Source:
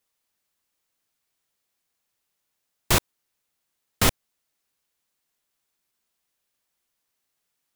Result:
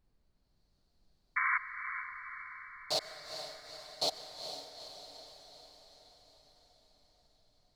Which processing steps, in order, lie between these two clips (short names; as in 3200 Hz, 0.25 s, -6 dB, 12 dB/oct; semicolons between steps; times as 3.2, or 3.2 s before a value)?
minimum comb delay 6.7 ms; AGC gain up to 11 dB; soft clip -12.5 dBFS, distortion -11 dB; double band-pass 1700 Hz, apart 2.7 oct; added noise brown -72 dBFS; painted sound noise, 1.36–1.58, 1000–2300 Hz -30 dBFS; diffused feedback echo 0.45 s, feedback 59%, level -8.5 dB; on a send at -13 dB: reverb RT60 2.9 s, pre-delay 91 ms